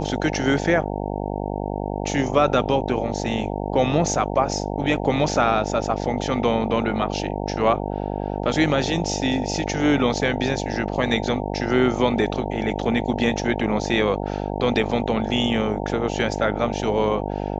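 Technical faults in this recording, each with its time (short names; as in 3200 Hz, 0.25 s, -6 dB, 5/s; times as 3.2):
buzz 50 Hz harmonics 18 -27 dBFS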